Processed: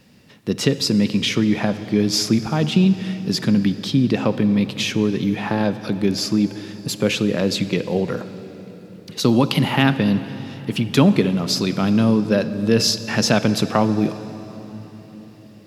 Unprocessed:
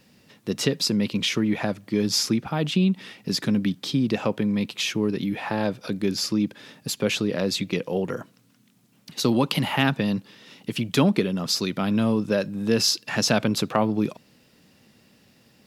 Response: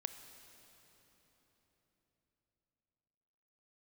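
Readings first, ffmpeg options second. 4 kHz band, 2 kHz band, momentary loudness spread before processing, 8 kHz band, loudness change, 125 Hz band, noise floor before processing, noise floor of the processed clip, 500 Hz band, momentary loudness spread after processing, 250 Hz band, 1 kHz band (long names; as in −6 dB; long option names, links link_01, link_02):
+3.0 dB, +3.5 dB, 8 LU, +2.0 dB, +5.0 dB, +6.5 dB, −60 dBFS, −43 dBFS, +4.5 dB, 15 LU, +6.0 dB, +4.0 dB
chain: -filter_complex "[0:a]asplit=2[link_01][link_02];[link_02]lowshelf=frequency=210:gain=6[link_03];[1:a]atrim=start_sample=2205,highshelf=frequency=8600:gain=-6.5[link_04];[link_03][link_04]afir=irnorm=-1:irlink=0,volume=8.5dB[link_05];[link_01][link_05]amix=inputs=2:normalize=0,volume=-6dB"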